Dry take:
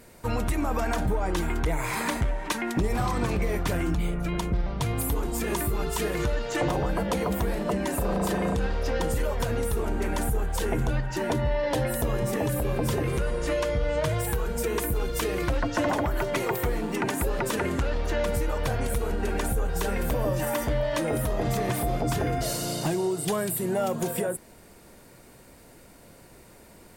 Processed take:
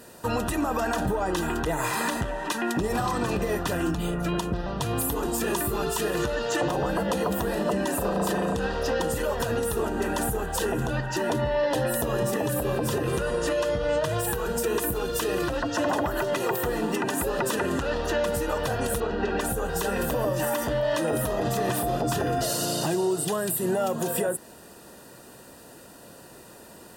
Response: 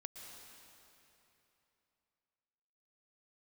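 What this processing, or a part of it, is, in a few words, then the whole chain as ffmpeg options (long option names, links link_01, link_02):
PA system with an anti-feedback notch: -filter_complex "[0:a]asettb=1/sr,asplit=3[link_01][link_02][link_03];[link_01]atrim=end=19.004[link_04];[link_02]atrim=start=19:end=19.4,asetpts=PTS-STARTPTS,afade=type=in:duration=0.004:curve=qsin,afade=type=out:start_time=0.396:duration=0.004:curve=qsin,lowpass=frequency=5000:width=0.5412,lowpass=frequency=5000:width=1.3066[link_05];[link_03]atrim=start=19.396[link_06];[link_04][link_05]acrossfade=duration=0.004:curve1=hsin:curve2=qsin[link_07];[link_07][link_06]acrossfade=duration=0.004:curve1=qsin:curve2=hsin,highpass=frequency=190:poles=1,asuperstop=centerf=2200:order=8:qfactor=5.9,alimiter=limit=-22.5dB:level=0:latency=1:release=135,volume=5.5dB"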